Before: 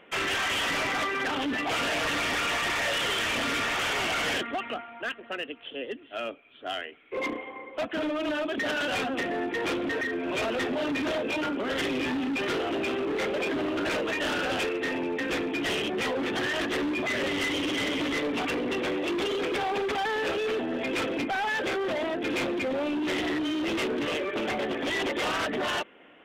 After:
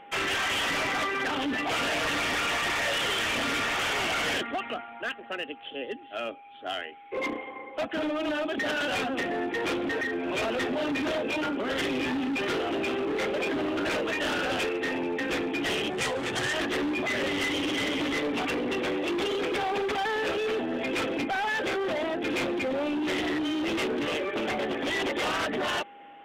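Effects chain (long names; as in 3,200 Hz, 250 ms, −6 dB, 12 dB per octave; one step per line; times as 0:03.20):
0:15.90–0:16.54: graphic EQ with 10 bands 125 Hz +7 dB, 250 Hz −7 dB, 8,000 Hz +10 dB
steady tone 810 Hz −47 dBFS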